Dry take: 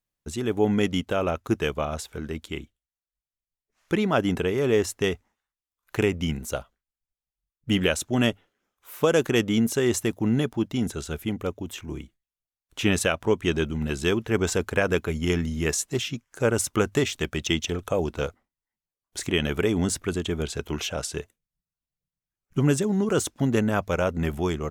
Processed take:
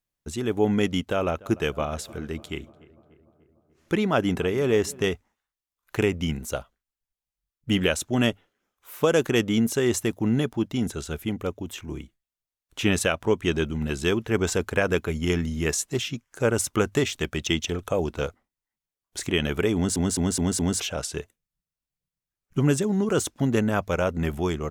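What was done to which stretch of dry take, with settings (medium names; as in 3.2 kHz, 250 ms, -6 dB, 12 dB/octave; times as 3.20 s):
1.04–5.08 s: filtered feedback delay 295 ms, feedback 64%, level -21 dB
19.75 s: stutter in place 0.21 s, 5 plays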